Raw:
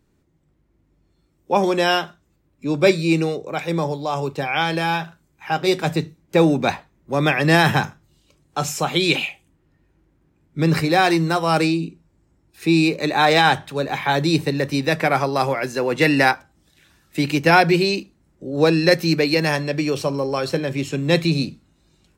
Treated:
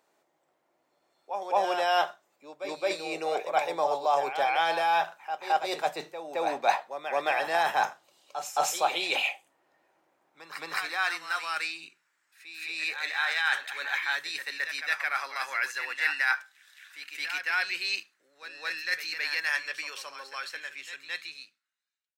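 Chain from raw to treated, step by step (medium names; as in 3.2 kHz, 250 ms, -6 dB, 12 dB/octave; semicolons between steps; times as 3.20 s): fade out at the end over 5.49 s; reverse; compression 12:1, threshold -25 dBFS, peak gain reduction 16 dB; reverse; high-pass sweep 690 Hz -> 1.6 kHz, 10.24–11.27 s; reverse echo 218 ms -8.5 dB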